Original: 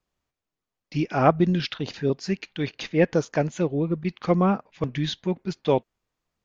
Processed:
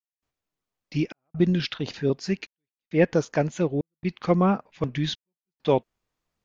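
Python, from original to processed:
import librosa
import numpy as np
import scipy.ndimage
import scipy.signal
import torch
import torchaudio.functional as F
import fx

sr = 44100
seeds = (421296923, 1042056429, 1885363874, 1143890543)

y = fx.step_gate(x, sr, bpm=67, pattern='.xxxx.xxxxx.', floor_db=-60.0, edge_ms=4.5)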